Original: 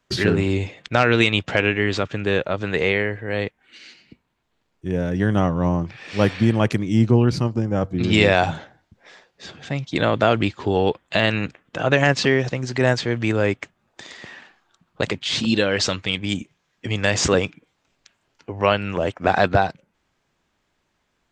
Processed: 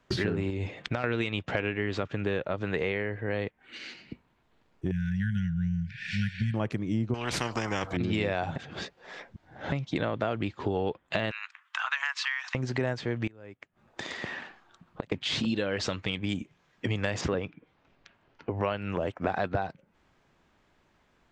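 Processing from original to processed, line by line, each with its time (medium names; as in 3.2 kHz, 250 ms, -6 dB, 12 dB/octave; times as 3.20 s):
0.50–1.04 s: compression 4:1, threshold -22 dBFS
4.91–6.54 s: brick-wall FIR band-stop 220–1400 Hz
7.14–7.97 s: spectrum-flattening compressor 4:1
8.56–9.72 s: reverse
11.31–12.55 s: steep high-pass 980 Hz 48 dB/octave
13.27–15.12 s: inverted gate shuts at -18 dBFS, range -28 dB
17.21–18.51 s: distance through air 150 m
whole clip: treble shelf 3.9 kHz -10.5 dB; compression 4:1, threshold -34 dBFS; trim +5 dB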